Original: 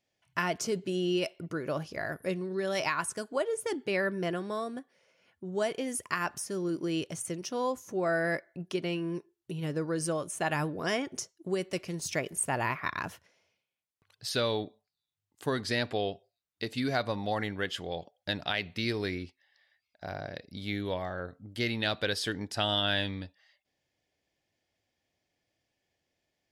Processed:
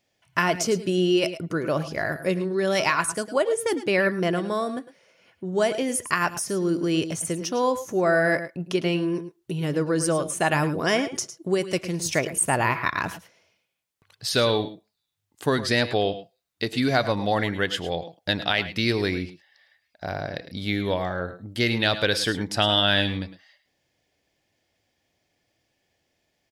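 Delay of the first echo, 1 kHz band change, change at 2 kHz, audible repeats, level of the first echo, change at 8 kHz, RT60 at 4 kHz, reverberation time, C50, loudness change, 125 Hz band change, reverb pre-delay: 104 ms, +8.0 dB, +8.0 dB, 1, −15.5 dB, +8.0 dB, no reverb audible, no reverb audible, no reverb audible, +8.5 dB, +8.0 dB, no reverb audible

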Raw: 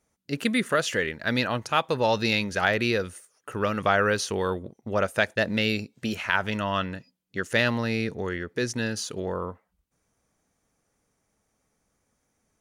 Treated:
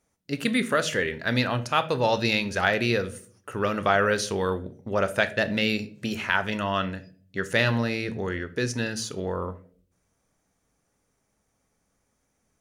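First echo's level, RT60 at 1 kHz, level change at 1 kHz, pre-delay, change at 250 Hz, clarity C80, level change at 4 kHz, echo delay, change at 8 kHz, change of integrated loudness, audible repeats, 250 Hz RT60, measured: no echo audible, 0.40 s, +0.5 dB, 7 ms, +0.5 dB, 20.0 dB, +0.5 dB, no echo audible, 0.0 dB, +0.5 dB, no echo audible, 0.70 s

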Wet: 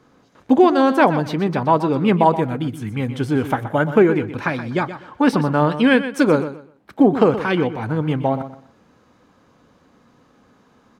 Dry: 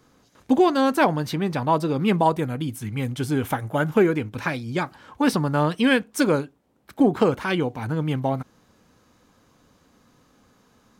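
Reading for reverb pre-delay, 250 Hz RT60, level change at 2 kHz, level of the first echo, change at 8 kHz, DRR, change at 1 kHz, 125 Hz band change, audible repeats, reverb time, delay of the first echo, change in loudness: no reverb audible, no reverb audible, +3.5 dB, −12.0 dB, can't be measured, no reverb audible, +5.0 dB, +3.0 dB, 2, no reverb audible, 124 ms, +4.5 dB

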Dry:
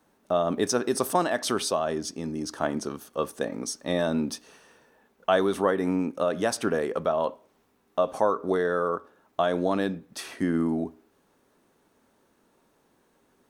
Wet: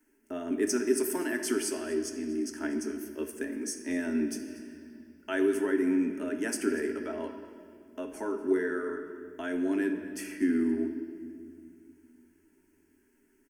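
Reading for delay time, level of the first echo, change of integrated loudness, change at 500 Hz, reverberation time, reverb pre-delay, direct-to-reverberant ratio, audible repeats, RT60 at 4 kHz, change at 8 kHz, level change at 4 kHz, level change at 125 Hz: 241 ms, −18.5 dB, −4.0 dB, −6.0 dB, 2.1 s, 7 ms, 4.5 dB, 1, 2.0 s, −2.0 dB, −9.0 dB, below −10 dB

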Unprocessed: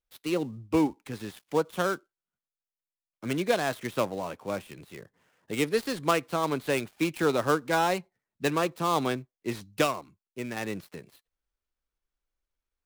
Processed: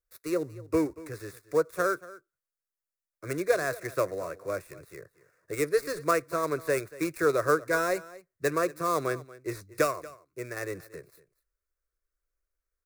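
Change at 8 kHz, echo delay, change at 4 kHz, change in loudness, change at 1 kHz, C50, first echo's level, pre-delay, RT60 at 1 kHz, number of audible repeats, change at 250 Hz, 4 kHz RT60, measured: +0.5 dB, 234 ms, −8.5 dB, −0.5 dB, −2.0 dB, no reverb audible, −19.0 dB, no reverb audible, no reverb audible, 1, −4.0 dB, no reverb audible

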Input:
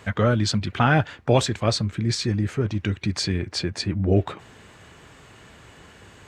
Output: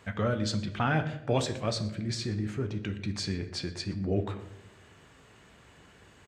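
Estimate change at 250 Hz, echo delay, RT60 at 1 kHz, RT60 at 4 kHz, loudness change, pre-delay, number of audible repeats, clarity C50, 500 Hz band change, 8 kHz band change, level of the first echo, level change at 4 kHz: −7.5 dB, 121 ms, 0.70 s, 0.55 s, −8.5 dB, 4 ms, 1, 12.0 dB, −8.0 dB, −8.5 dB, −21.0 dB, −8.5 dB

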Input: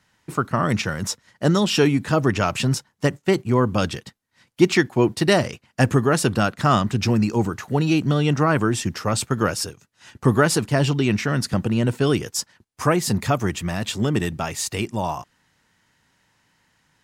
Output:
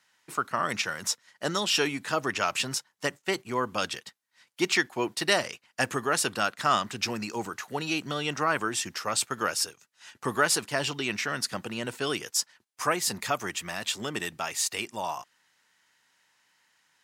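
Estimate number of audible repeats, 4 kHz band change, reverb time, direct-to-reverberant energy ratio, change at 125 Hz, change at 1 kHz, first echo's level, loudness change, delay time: no echo audible, −1.5 dB, no reverb audible, no reverb audible, −20.0 dB, −4.5 dB, no echo audible, −7.5 dB, no echo audible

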